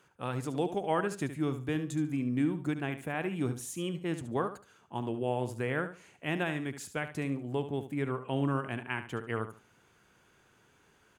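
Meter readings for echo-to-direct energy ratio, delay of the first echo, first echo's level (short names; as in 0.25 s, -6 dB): -11.0 dB, 72 ms, -11.0 dB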